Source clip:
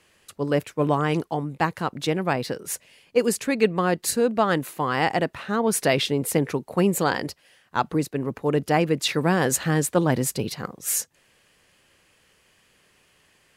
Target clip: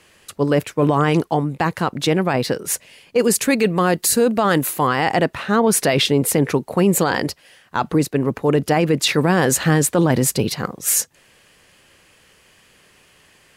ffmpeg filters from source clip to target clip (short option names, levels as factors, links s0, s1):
-filter_complex "[0:a]asettb=1/sr,asplit=3[s0][s1][s2];[s0]atrim=end=3.344[s3];[s1]atrim=start=3.34:end=4.87,asetpts=PTS-STARTPTS,afade=t=in:d=0.004:c=qsin,afade=t=out:st=1.526:d=0.004:c=qsin,highshelf=f=7500:g=10.5[s4];[s2]atrim=start=4.866[s5];[s3][s4]acrossfade=d=0.004:c1=hsin:c2=qsin[s6];[s6][s5]acrossfade=d=0.004:c1=qsin:c2=hsin,alimiter=limit=0.168:level=0:latency=1:release=11,volume=2.51"